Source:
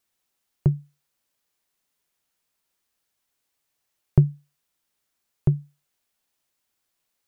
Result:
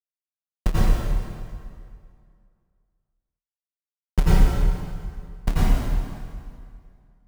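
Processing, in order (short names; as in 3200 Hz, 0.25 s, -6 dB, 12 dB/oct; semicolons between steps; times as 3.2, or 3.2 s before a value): frequency shift -180 Hz; companded quantiser 4-bit; plate-style reverb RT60 2.2 s, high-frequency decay 0.8×, pre-delay 75 ms, DRR -9 dB; gain -2.5 dB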